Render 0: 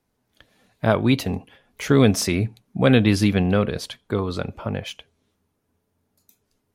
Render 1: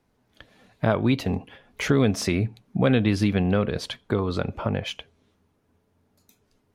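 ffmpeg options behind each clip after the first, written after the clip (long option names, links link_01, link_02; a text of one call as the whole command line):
ffmpeg -i in.wav -af "highshelf=frequency=6700:gain=-11,acompressor=threshold=-29dB:ratio=2,volume=5dB" out.wav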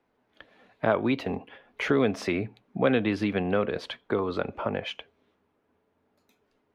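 ffmpeg -i in.wav -filter_complex "[0:a]acrossover=split=250 3500:gain=0.224 1 0.178[link_01][link_02][link_03];[link_01][link_02][link_03]amix=inputs=3:normalize=0" out.wav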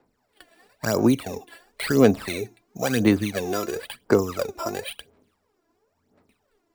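ffmpeg -i in.wav -af "acrusher=samples=7:mix=1:aa=0.000001,aphaser=in_gain=1:out_gain=1:delay=3:decay=0.72:speed=0.97:type=sinusoidal,volume=-1.5dB" out.wav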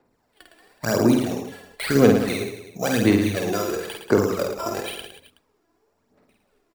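ffmpeg -i in.wav -af "aecho=1:1:50|110|182|268.4|372.1:0.631|0.398|0.251|0.158|0.1" out.wav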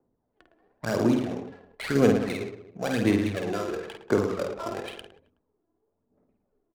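ffmpeg -i in.wav -af "adynamicsmooth=sensitivity=6:basefreq=700,volume=-5dB" out.wav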